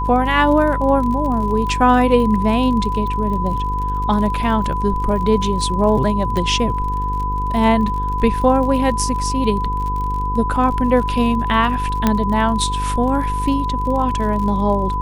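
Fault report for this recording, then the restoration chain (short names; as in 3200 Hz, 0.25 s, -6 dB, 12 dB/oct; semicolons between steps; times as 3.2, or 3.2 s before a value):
buzz 50 Hz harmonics 10 -23 dBFS
crackle 43/s -26 dBFS
tone 1000 Hz -21 dBFS
6.37 pop -11 dBFS
12.07 pop -2 dBFS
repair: de-click; de-hum 50 Hz, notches 10; notch 1000 Hz, Q 30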